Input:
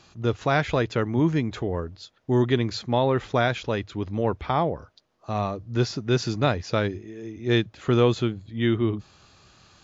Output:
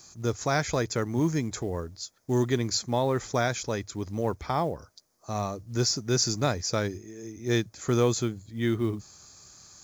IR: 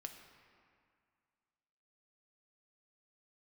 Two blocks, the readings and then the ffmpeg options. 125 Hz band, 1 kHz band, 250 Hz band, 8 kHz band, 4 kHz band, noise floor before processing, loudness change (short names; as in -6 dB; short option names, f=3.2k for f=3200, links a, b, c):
-4.0 dB, -4.0 dB, -4.0 dB, n/a, 0.0 dB, -60 dBFS, -3.5 dB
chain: -af "bandreject=f=2.8k:w=6.5,aexciter=amount=8:drive=5.7:freq=5.1k,acrusher=bits=8:mode=log:mix=0:aa=0.000001,volume=-4dB"